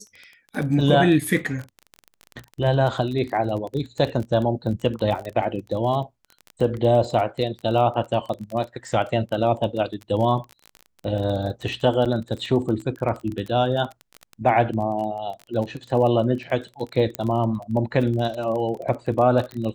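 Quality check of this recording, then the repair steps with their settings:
surface crackle 23 per second −28 dBFS
0:12.05–0:12.06: drop-out 6.9 ms
0:17.15: click −10 dBFS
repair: click removal
repair the gap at 0:12.05, 6.9 ms

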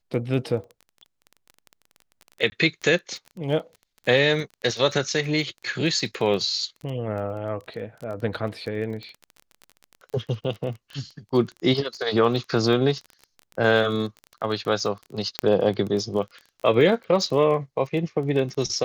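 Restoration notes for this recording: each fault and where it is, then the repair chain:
surface crackle 20 per second −31 dBFS
0:02.50–0:02.52: drop-out 20 ms
0:15.39: click −6 dBFS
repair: click removal
repair the gap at 0:02.50, 20 ms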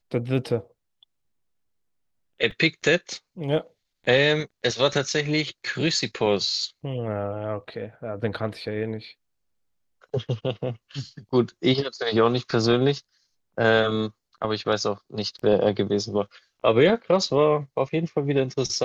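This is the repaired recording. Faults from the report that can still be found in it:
0:15.39: click

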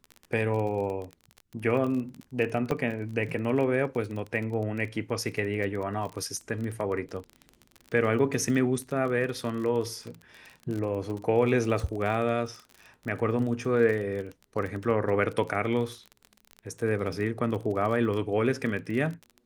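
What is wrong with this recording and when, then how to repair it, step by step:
surface crackle 27 per second −33 dBFS
0:02.71–0:02.72: drop-out 6.1 ms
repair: click removal
repair the gap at 0:02.71, 6.1 ms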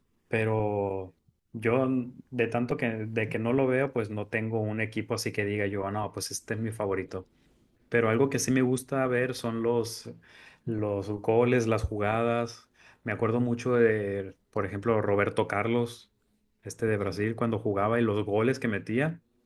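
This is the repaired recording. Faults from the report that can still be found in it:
none of them is left

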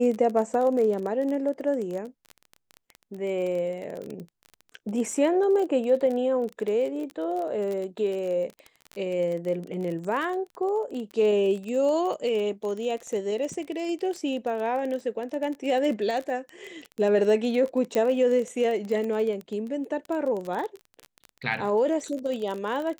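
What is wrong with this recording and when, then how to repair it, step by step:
surface crackle 24 per second −30 dBFS
0:17.95: click −14 dBFS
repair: click removal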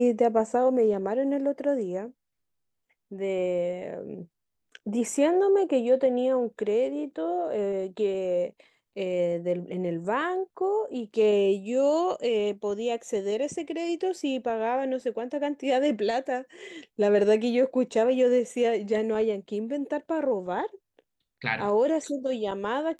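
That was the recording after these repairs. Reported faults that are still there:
none of them is left

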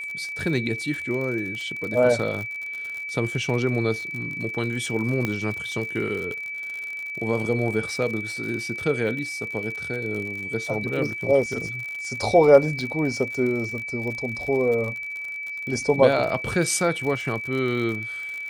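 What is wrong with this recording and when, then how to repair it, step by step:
surface crackle 56 per second −30 dBFS
whistle 2,300 Hz −30 dBFS
0:05.25: click −12 dBFS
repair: click removal
notch filter 2,300 Hz, Q 30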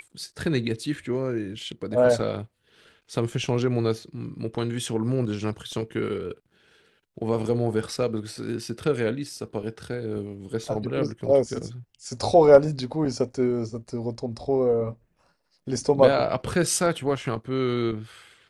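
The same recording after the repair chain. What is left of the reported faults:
0:05.25: click

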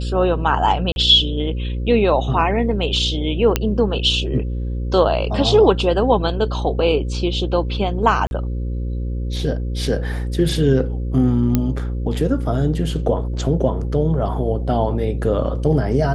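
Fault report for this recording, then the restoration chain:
mains buzz 60 Hz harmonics 9 −23 dBFS
0:00.92–0:00.96: drop-out 41 ms
0:03.56: click −2 dBFS
0:08.27–0:08.31: drop-out 41 ms
0:11.55: click −4 dBFS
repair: click removal
hum removal 60 Hz, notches 9
repair the gap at 0:00.92, 41 ms
repair the gap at 0:08.27, 41 ms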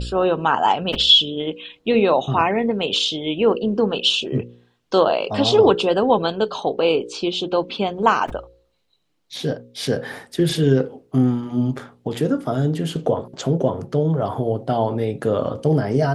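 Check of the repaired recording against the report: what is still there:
none of them is left

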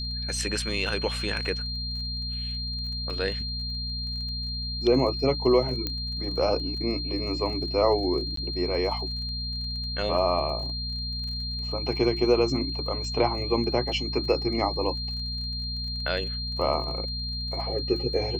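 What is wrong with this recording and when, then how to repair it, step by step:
surface crackle 27 per second −37 dBFS
mains hum 60 Hz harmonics 4 −34 dBFS
whistle 4,200 Hz −32 dBFS
0:05.87: click −14 dBFS
0:08.36–0:08.37: drop-out 13 ms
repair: click removal
hum removal 60 Hz, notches 4
notch filter 4,200 Hz, Q 30
repair the gap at 0:08.36, 13 ms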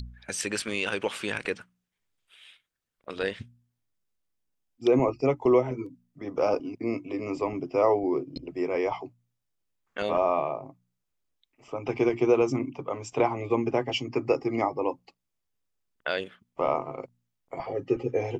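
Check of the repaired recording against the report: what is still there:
0:05.87: click

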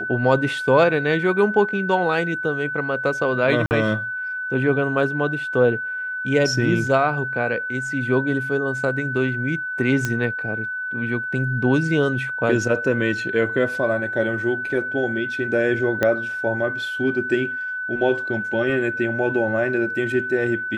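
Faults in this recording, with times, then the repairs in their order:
whistle 1,500 Hz −25 dBFS
0:03.66–0:03.71: drop-out 49 ms
0:10.05: click −9 dBFS
0:16.03: click −7 dBFS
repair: click removal
notch filter 1,500 Hz, Q 30
repair the gap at 0:03.66, 49 ms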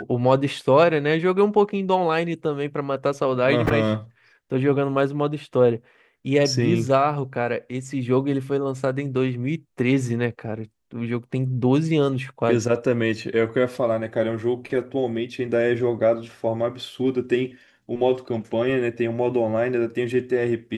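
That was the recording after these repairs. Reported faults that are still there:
0:16.03: click

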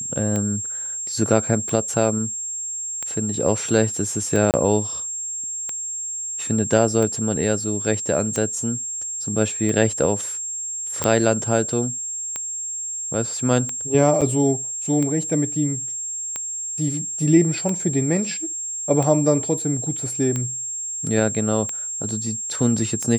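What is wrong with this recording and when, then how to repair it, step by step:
scratch tick 45 rpm −13 dBFS
whistle 7,500 Hz −26 dBFS
0:04.51–0:04.54: drop-out 28 ms
0:11.04: click −6 dBFS
0:14.21–0:14.22: drop-out 6.7 ms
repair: click removal
notch filter 7,500 Hz, Q 30
repair the gap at 0:04.51, 28 ms
repair the gap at 0:14.21, 6.7 ms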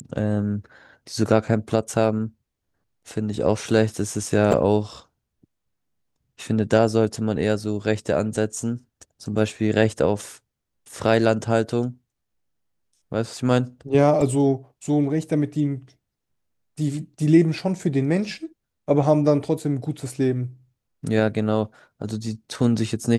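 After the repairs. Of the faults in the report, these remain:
none of them is left

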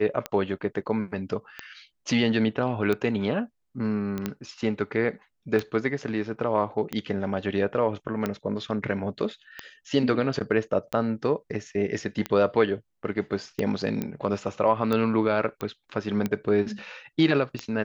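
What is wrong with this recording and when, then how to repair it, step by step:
scratch tick 45 rpm −14 dBFS
0:04.18: click −18 dBFS
0:14.02: click −16 dBFS
0:15.61: click −18 dBFS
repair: click removal

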